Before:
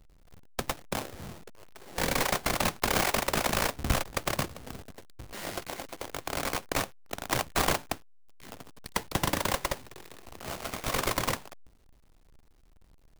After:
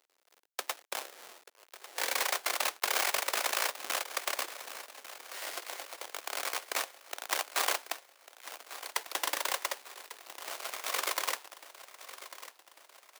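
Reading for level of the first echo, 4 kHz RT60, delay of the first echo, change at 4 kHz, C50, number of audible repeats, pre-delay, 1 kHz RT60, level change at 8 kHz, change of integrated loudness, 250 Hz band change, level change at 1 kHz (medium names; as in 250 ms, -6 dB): -14.5 dB, no reverb, 1147 ms, -0.5 dB, no reverb, 4, no reverb, no reverb, -0.5 dB, -2.5 dB, -19.5 dB, -4.0 dB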